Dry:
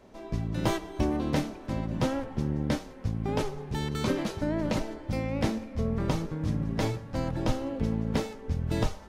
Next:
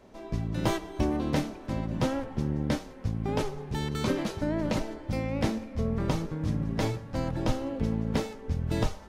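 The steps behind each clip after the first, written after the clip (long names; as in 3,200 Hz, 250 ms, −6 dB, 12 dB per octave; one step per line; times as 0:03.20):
no processing that can be heard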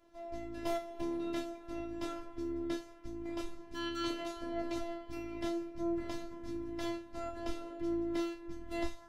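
tuned comb filter 220 Hz, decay 0.27 s, harmonics all, mix 90%
phases set to zero 340 Hz
level +3.5 dB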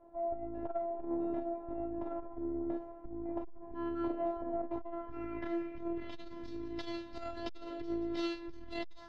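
low-pass filter sweep 800 Hz → 4,300 Hz, 0:04.58–0:06.38
saturating transformer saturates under 220 Hz
level +4 dB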